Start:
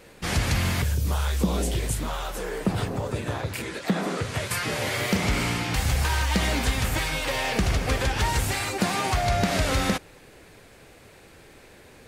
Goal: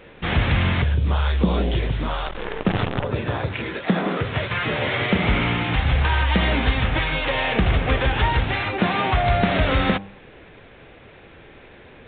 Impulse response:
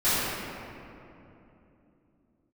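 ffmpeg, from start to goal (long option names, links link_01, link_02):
-filter_complex "[0:a]bandreject=frequency=98.91:width_type=h:width=4,bandreject=frequency=197.82:width_type=h:width=4,bandreject=frequency=296.73:width_type=h:width=4,bandreject=frequency=395.64:width_type=h:width=4,bandreject=frequency=494.55:width_type=h:width=4,bandreject=frequency=593.46:width_type=h:width=4,bandreject=frequency=692.37:width_type=h:width=4,bandreject=frequency=791.28:width_type=h:width=4,bandreject=frequency=890.19:width_type=h:width=4,bandreject=frequency=989.1:width_type=h:width=4,bandreject=frequency=1088.01:width_type=h:width=4,asettb=1/sr,asplit=3[link_01][link_02][link_03];[link_01]atrim=end=2.264[link_04];[link_02]atrim=start=2.26:end=3.04,asetpts=PTS-STARTPTS,afade=type=in:duration=0.004:curve=qsin,afade=type=out:start_time=0.776:duration=0.004:curve=qsin,acrusher=bits=5:dc=4:mix=0:aa=0.000001[link_05];[link_03]atrim=start=3.036[link_06];[link_04][link_05]acrossfade=duration=0.004:curve1=hsin:curve2=qsin[link_07];[link_07][link_06]acrossfade=duration=0.004:curve1=qsin:curve2=hsin,aresample=8000,aresample=44100,volume=5dB"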